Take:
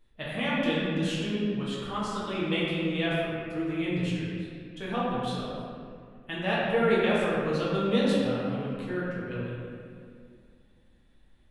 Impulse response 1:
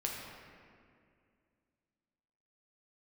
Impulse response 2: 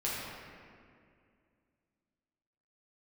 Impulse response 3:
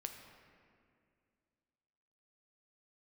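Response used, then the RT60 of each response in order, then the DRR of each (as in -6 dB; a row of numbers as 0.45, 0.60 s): 2; 2.3, 2.3, 2.3 s; -2.5, -8.0, 4.0 dB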